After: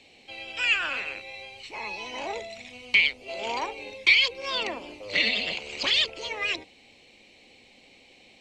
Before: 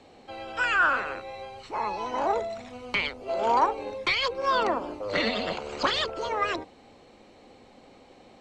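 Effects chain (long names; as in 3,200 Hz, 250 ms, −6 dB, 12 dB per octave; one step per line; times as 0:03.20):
high shelf with overshoot 1,800 Hz +9.5 dB, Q 3
level −6.5 dB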